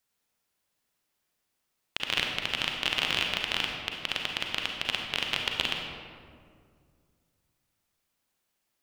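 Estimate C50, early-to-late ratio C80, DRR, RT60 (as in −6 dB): 2.0 dB, 3.5 dB, 0.5 dB, 2.1 s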